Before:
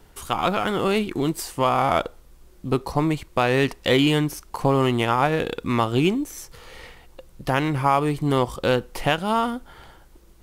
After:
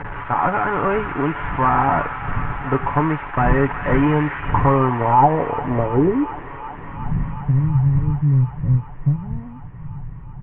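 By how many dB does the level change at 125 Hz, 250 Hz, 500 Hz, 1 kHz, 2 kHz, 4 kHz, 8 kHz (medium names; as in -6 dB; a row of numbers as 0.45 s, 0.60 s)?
+8.5 dB, +2.0 dB, +0.5 dB, +5.0 dB, +2.0 dB, under -15 dB, under -40 dB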